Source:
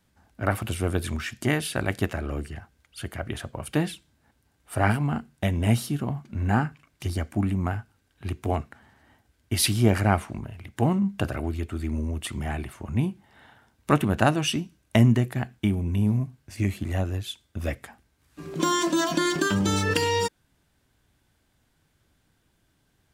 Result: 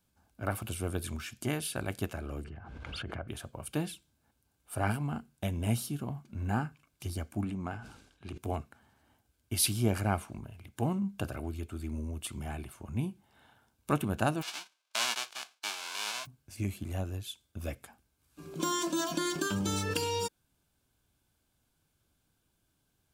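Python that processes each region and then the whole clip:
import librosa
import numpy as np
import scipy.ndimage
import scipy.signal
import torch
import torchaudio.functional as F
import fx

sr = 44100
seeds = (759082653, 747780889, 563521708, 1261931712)

y = fx.chain(x, sr, fx.lowpass(hz=2000.0, slope=12),
    fx.pre_swell(db_per_s=24.0), at=(2.44, 3.28))
y = fx.chain(y, sr, fx.lowpass(hz=6800.0, slope=12),
    fx.peak_eq(hz=97.0, db=-8.0, octaves=0.6),
    fx.sustainer(db_per_s=71.0), at=(7.44, 8.38))
y = fx.envelope_flatten(y, sr, power=0.1, at=(14.41, 16.25), fade=0.02)
y = fx.bandpass_edges(y, sr, low_hz=760.0, high_hz=4100.0, at=(14.41, 16.25), fade=0.02)
y = fx.high_shelf(y, sr, hz=7400.0, db=8.5)
y = fx.notch(y, sr, hz=1900.0, q=5.3)
y = y * librosa.db_to_amplitude(-8.5)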